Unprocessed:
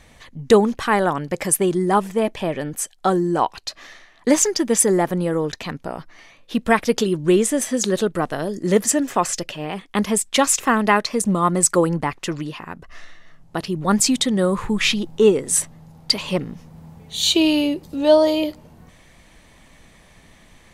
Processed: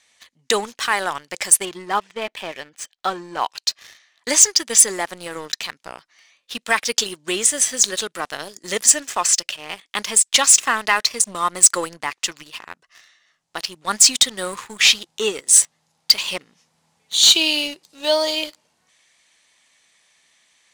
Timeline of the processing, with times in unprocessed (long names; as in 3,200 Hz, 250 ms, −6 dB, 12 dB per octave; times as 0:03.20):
0:01.65–0:03.44: low-pass filter 3,600 Hz
whole clip: meter weighting curve ITU-R 468; leveller curve on the samples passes 2; level −9.5 dB